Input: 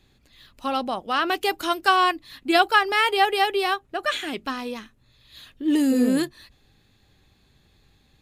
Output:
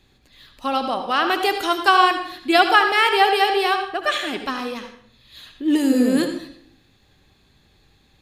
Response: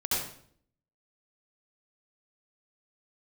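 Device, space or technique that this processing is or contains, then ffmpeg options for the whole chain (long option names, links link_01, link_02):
filtered reverb send: -filter_complex "[0:a]asplit=2[link_01][link_02];[link_02]highpass=220,lowpass=7900[link_03];[1:a]atrim=start_sample=2205[link_04];[link_03][link_04]afir=irnorm=-1:irlink=0,volume=-12.5dB[link_05];[link_01][link_05]amix=inputs=2:normalize=0,volume=1.5dB"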